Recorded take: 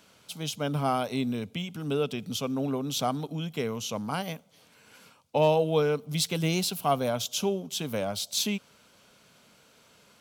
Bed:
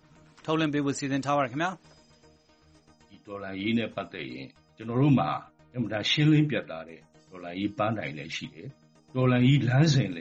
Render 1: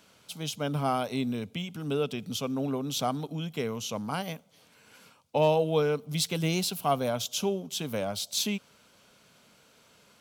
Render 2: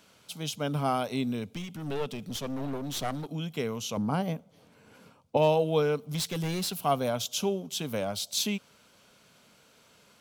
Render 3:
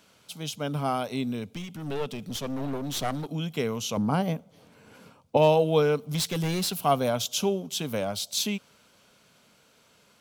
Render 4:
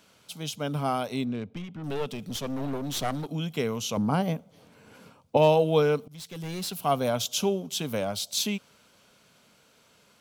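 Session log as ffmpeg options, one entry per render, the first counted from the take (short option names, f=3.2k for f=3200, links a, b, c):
-af "volume=-1dB"
-filter_complex "[0:a]asettb=1/sr,asplit=3[a][b][c];[a]atrim=end=1.504[d];[b]atrim=start=1.5:end=3.29,asetpts=PTS-STARTPTS,afade=t=in:d=0.004:c=qsin,afade=t=out:st=1.786:d=0.004:c=qsin,aeval=exprs='clip(val(0),-1,0.0133)':c=same[e];[c]atrim=start=3.286[f];[d][e]acrossfade=d=0.004:c1=hsin:c2=qsin[g];[g][f]acrossfade=d=0.004:c1=qsin:c2=hsin,asettb=1/sr,asplit=3[h][i][j];[h]atrim=end=3.974[k];[i]atrim=start=3.97:end=5.37,asetpts=PTS-STARTPTS,afade=t=in:d=0.004:c=qsin,afade=t=out:st=1.396:d=0.004:c=qsin,tiltshelf=f=1.1k:g=7[l];[j]atrim=start=5.366[m];[k][l]acrossfade=d=0.004:c1=hsin:c2=qsin[n];[n][m]acrossfade=d=0.004:c1=qsin:c2=hsin,asettb=1/sr,asplit=3[o][p][q];[o]atrim=end=6.084[r];[p]atrim=start=6.08:end=6.8,asetpts=PTS-STARTPTS,afade=t=in:d=0.004:c=qsin,afade=t=out:st=0.716:d=0.004:c=qsin,asoftclip=type=hard:threshold=-27.5dB[s];[q]atrim=start=6.796[t];[r][s]acrossfade=d=0.004:c1=hsin:c2=qsin[u];[u][t]acrossfade=d=0.004:c1=qsin:c2=hsin"
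-af "dynaudnorm=f=280:g=17:m=3.5dB"
-filter_complex "[0:a]asettb=1/sr,asplit=3[a][b][c];[a]atrim=end=1.244[d];[b]atrim=start=1.24:end=1.84,asetpts=PTS-STARTPTS,afade=t=in:d=0.004:c=qsin,afade=t=out:st=0.596:d=0.004:c=qsin,adynamicsmooth=sensitivity=6.5:basefreq=2k[e];[c]atrim=start=1.836[f];[d][e]acrossfade=d=0.004:c1=hsin:c2=qsin[g];[g][f]acrossfade=d=0.004:c1=qsin:c2=hsin,asplit=2[h][i];[h]atrim=end=6.08,asetpts=PTS-STARTPTS,afade=t=out:st=6.076:d=0.004:c=hsin:silence=0.0794328[j];[i]atrim=start=6.08,asetpts=PTS-STARTPTS,afade=t=in:d=1.07:silence=0.0794328[k];[j][k]concat=n=2:v=0:a=1"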